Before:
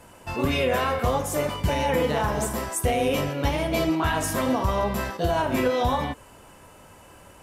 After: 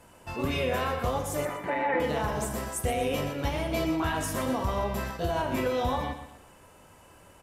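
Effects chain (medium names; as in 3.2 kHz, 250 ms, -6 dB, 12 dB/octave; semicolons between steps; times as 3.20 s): 1.45–2.00 s: cabinet simulation 290–3100 Hz, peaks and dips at 320 Hz +7 dB, 760 Hz +5 dB, 1.3 kHz +4 dB, 1.9 kHz +9 dB, 3 kHz -9 dB; feedback delay 122 ms, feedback 37%, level -10.5 dB; trim -5.5 dB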